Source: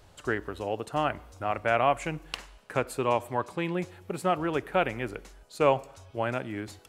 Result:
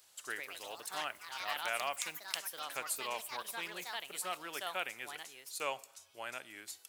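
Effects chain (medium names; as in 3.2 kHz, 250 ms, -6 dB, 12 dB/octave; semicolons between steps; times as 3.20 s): ever faster or slower copies 162 ms, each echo +4 st, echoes 3, each echo -6 dB; differentiator; trim +4 dB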